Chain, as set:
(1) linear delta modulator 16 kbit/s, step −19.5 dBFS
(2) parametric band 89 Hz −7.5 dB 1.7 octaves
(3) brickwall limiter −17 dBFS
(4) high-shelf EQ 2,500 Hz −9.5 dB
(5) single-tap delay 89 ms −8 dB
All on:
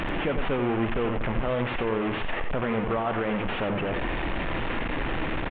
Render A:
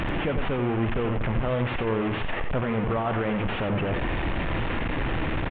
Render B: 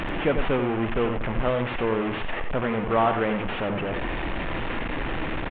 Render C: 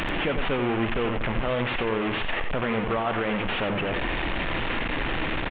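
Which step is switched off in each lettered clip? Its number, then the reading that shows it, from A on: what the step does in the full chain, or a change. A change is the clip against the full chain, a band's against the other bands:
2, 125 Hz band +5.0 dB
3, change in crest factor +5.0 dB
4, 4 kHz band +5.5 dB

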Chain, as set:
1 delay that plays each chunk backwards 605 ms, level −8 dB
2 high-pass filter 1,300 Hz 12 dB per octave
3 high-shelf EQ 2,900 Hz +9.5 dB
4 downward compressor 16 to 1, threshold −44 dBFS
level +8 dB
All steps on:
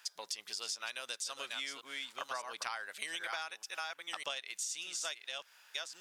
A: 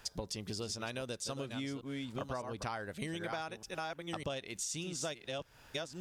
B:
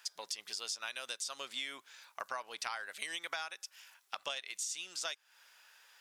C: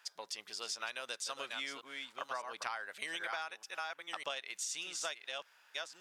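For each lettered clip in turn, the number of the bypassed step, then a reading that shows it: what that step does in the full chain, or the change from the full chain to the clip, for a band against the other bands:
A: 2, 250 Hz band +22.0 dB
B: 1, change in crest factor +3.5 dB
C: 3, 8 kHz band −3.0 dB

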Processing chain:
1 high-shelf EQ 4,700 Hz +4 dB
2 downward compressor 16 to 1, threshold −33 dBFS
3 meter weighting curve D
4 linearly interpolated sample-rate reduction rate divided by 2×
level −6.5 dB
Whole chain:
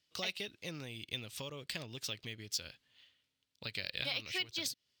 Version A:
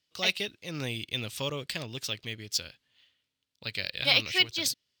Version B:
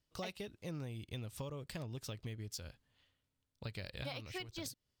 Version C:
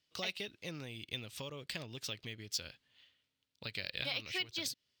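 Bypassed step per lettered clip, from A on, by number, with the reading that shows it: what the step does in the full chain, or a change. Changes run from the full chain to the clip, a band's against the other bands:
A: 2, average gain reduction 7.5 dB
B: 3, 4 kHz band −11.0 dB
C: 1, 8 kHz band −1.5 dB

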